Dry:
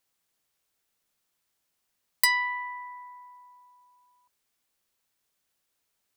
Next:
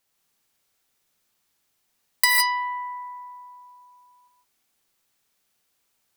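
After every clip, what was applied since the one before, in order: non-linear reverb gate 0.18 s rising, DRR 0 dB; gain +3 dB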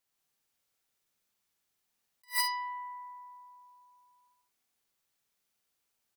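early reflections 48 ms -11.5 dB, 63 ms -12 dB; attack slew limiter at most 350 dB/s; gain -9 dB

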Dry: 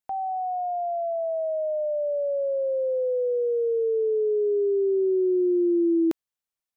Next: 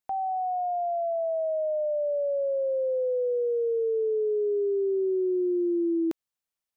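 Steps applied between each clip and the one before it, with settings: compressor, threshold -24 dBFS, peak gain reduction 4.5 dB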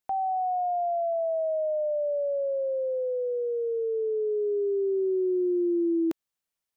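dynamic EQ 480 Hz, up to -4 dB, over -37 dBFS, Q 2.7; gain +1.5 dB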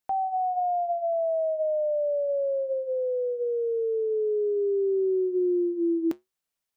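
flange 1.1 Hz, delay 6.3 ms, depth 1.5 ms, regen -76%; gain +5.5 dB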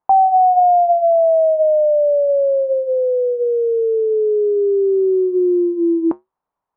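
synth low-pass 970 Hz, resonance Q 3.9; gain +8 dB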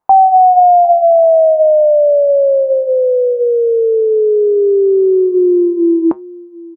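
echo 0.751 s -20.5 dB; gain +5 dB

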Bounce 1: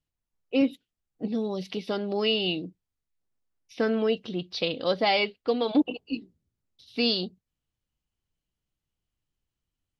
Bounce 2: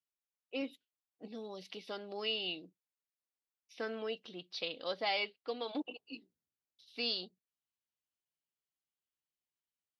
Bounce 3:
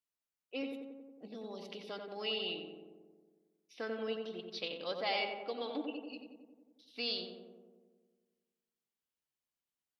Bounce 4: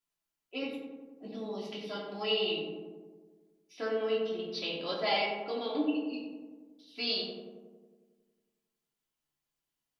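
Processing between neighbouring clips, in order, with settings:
HPF 720 Hz 6 dB/oct; gain -8.5 dB
darkening echo 91 ms, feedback 71%, low-pass 1700 Hz, level -4 dB; gain -1.5 dB
shoebox room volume 300 m³, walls furnished, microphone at 3 m

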